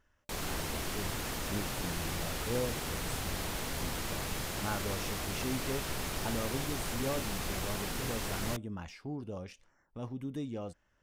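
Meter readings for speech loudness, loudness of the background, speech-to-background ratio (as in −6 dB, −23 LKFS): −41.5 LKFS, −36.5 LKFS, −5.0 dB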